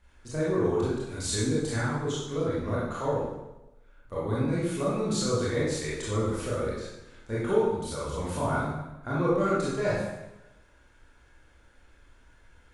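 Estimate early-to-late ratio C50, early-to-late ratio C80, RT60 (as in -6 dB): -2.0 dB, 2.5 dB, 1.0 s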